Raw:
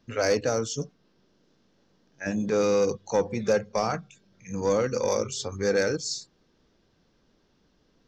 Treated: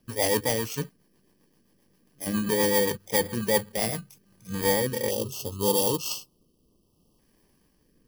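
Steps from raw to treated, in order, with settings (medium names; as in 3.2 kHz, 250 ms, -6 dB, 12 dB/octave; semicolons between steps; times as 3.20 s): bit-reversed sample order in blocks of 32 samples; time-frequency box 5.10–7.19 s, 1.3–2.6 kHz -27 dB; rotary cabinet horn 7.5 Hz, later 0.65 Hz, at 3.87 s; trim +2.5 dB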